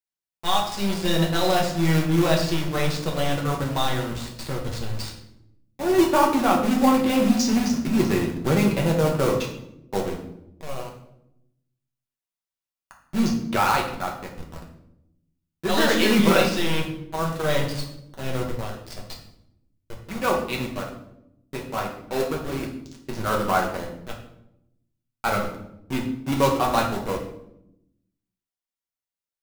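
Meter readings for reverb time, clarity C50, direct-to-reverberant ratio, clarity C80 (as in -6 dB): 0.80 s, 6.5 dB, -1.0 dB, 10.0 dB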